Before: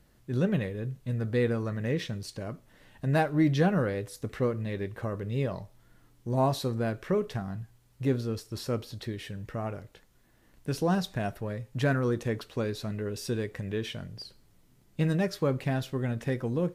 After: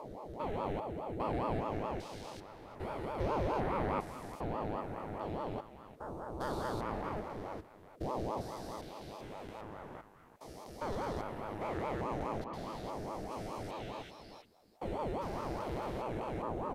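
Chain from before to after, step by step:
spectrum averaged block by block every 400 ms
0:12.44–0:14.19: all-pass dispersion highs, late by 96 ms, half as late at 940 Hz
far-end echo of a speakerphone 350 ms, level −9 dB
ring modulator whose carrier an LFO sweeps 480 Hz, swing 60%, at 4.8 Hz
level −2.5 dB

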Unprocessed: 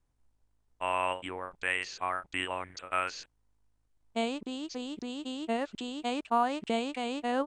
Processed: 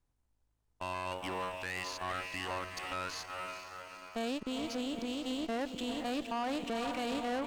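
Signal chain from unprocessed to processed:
feedback delay with all-pass diffusion 454 ms, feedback 57%, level −9.5 dB
in parallel at −7 dB: centre clipping without the shift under −44 dBFS
on the sum: brickwall limiter −20.5 dBFS, peak gain reduction 8.5 dB
tube saturation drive 31 dB, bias 0.6

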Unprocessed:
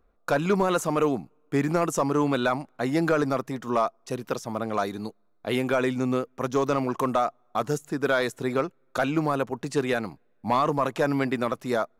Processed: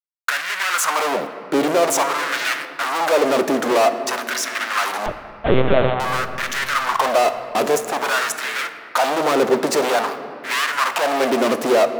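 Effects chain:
low-shelf EQ 320 Hz +7 dB
fuzz pedal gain 40 dB, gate −49 dBFS
bit reduction 7 bits
auto-filter high-pass sine 0.5 Hz 360–1,800 Hz
0:05.06–0:06.00: linear-prediction vocoder at 8 kHz pitch kept
on a send: convolution reverb RT60 2.7 s, pre-delay 3 ms, DRR 9 dB
on the sum: level −4.5 dB

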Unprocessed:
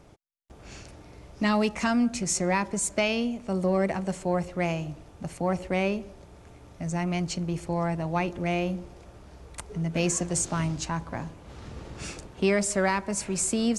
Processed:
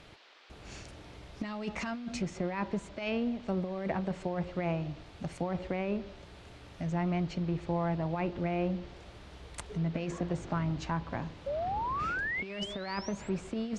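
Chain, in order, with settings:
sound drawn into the spectrogram rise, 0:11.46–0:13.30, 540–8,000 Hz −31 dBFS
compressor whose output falls as the input rises −27 dBFS, ratio −0.5
treble cut that deepens with the level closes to 1,900 Hz, closed at −24 dBFS
noise in a band 310–4,100 Hz −55 dBFS
level −4 dB

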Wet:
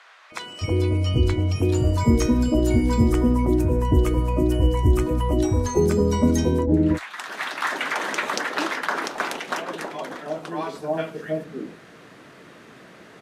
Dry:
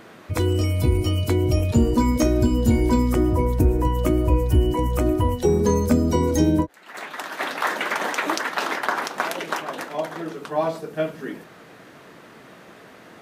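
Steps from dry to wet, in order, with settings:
low-pass filter 6,000 Hz 12 dB per octave, from 0:01.56 11,000 Hz
multiband delay without the direct sound highs, lows 320 ms, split 800 Hz

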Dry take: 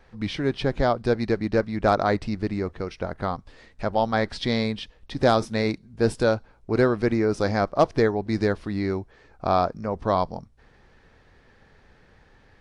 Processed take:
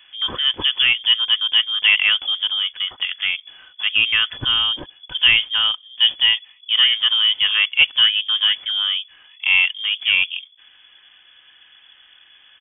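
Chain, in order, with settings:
adaptive Wiener filter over 9 samples
low-shelf EQ 140 Hz −5.5 dB
comb filter 4.2 ms, depth 30%
in parallel at −8.5 dB: hard clipping −25.5 dBFS, distortion −5 dB
on the sum: voice inversion scrambler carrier 3,400 Hz
level +4 dB

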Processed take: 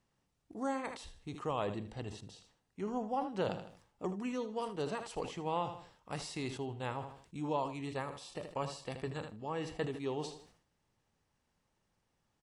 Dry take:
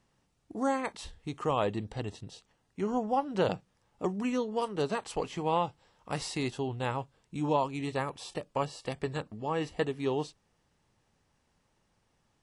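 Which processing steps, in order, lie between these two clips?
repeating echo 78 ms, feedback 30%, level −14 dB
level that may fall only so fast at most 97 dB per second
level −7 dB

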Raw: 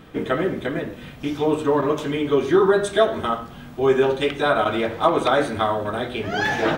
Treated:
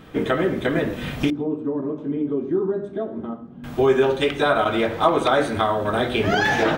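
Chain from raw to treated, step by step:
camcorder AGC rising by 16 dB per second
0:01.30–0:03.64: resonant band-pass 240 Hz, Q 1.8

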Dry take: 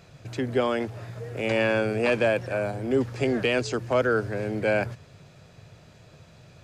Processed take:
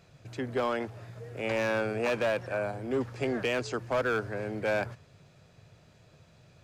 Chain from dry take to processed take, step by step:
dynamic equaliser 1,100 Hz, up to +6 dB, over −38 dBFS, Q 0.75
gain into a clipping stage and back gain 16 dB
level −7 dB

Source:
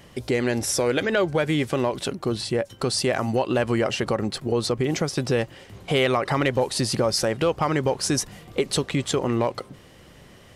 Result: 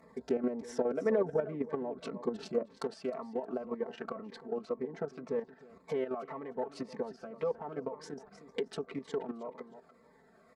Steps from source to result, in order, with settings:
adaptive Wiener filter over 15 samples
camcorder AGC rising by 5.7 dB per second
treble cut that deepens with the level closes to 810 Hz, closed at −19 dBFS
parametric band 3,500 Hz −8 dB 1.4 octaves
comb filter 4.5 ms, depth 93%
repeating echo 312 ms, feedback 25%, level −14.5 dB
output level in coarse steps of 10 dB
high-pass filter 600 Hz 6 dB per octave, from 0:02.77 1,300 Hz
phaser whose notches keep moving one way falling 1.9 Hz

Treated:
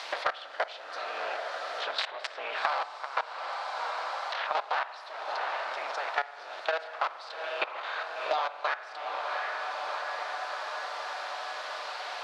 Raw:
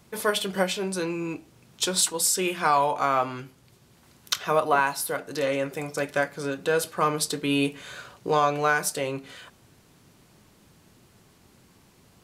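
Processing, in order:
sub-harmonics by changed cycles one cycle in 3, inverted
output level in coarse steps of 22 dB
background noise violet −47 dBFS
Chebyshev band-pass filter 630–4,400 Hz, order 3
on a send: feedback delay with all-pass diffusion 735 ms, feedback 43%, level −14.5 dB
on the sum: spring reverb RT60 1.2 s, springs 44 ms, chirp 35 ms, DRR 14 dB
multiband upward and downward compressor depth 100%

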